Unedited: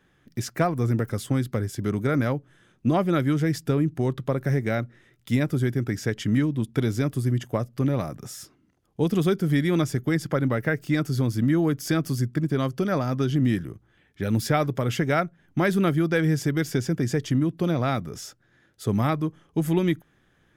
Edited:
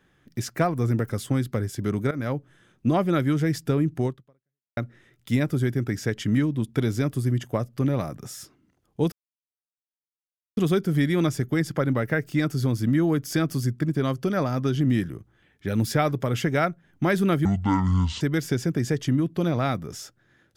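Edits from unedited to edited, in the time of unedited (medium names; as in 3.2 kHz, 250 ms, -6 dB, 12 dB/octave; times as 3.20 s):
2.11–2.37 s: fade in, from -15 dB
4.06–4.77 s: fade out exponential
9.12 s: insert silence 1.45 s
16.00–16.44 s: speed 58%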